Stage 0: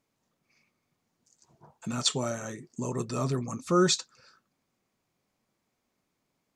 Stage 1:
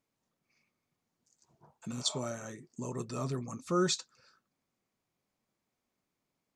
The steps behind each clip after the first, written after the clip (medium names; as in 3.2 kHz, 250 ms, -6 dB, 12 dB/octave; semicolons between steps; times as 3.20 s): spectral replace 1.95–2.16 s, 590–3100 Hz both; trim -6 dB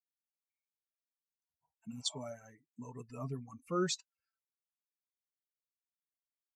expander on every frequency bin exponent 2; trim -2.5 dB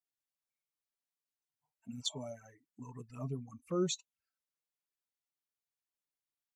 touch-sensitive flanger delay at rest 7 ms, full sweep at -40 dBFS; trim +1.5 dB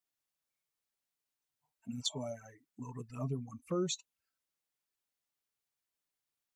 compression 3:1, threshold -35 dBFS, peak gain reduction 6 dB; trim +3.5 dB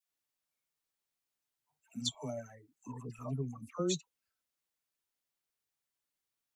phase dispersion lows, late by 89 ms, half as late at 960 Hz